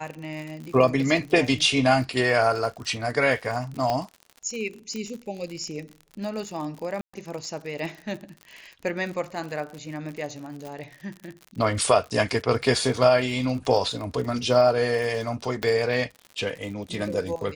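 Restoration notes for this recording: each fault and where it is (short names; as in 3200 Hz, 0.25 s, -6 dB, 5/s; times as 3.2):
crackle 61/s -33 dBFS
3.9 pop -13 dBFS
4.96 pop -21 dBFS
7.01–7.13 gap 0.125 s
10.67 pop
15.63 pop -14 dBFS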